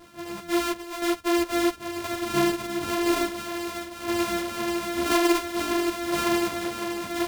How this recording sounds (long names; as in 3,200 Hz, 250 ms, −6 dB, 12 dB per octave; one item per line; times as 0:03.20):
a buzz of ramps at a fixed pitch in blocks of 128 samples
tremolo saw down 0.98 Hz, depth 50%
a shimmering, thickened sound